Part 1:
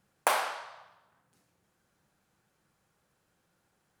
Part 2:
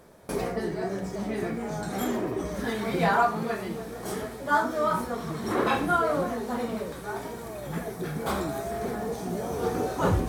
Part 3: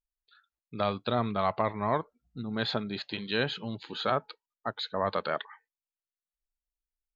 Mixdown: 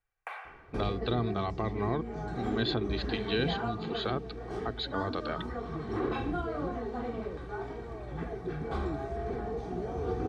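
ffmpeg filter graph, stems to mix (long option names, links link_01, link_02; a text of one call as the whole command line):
ffmpeg -i stem1.wav -i stem2.wav -i stem3.wav -filter_complex "[0:a]firequalizer=gain_entry='entry(120,0);entry(190,-22);entry(490,-4);entry(2300,6);entry(3900,-15)':delay=0.05:min_phase=1,volume=-14dB[link_01];[1:a]lowpass=4400,lowshelf=frequency=130:gain=11.5,adelay=450,volume=-6dB[link_02];[2:a]volume=2.5dB[link_03];[link_01][link_02][link_03]amix=inputs=3:normalize=0,highshelf=frequency=5100:gain=-10.5,aecho=1:1:2.6:0.49,acrossover=split=380|3000[link_04][link_05][link_06];[link_05]acompressor=threshold=-35dB:ratio=6[link_07];[link_04][link_07][link_06]amix=inputs=3:normalize=0" out.wav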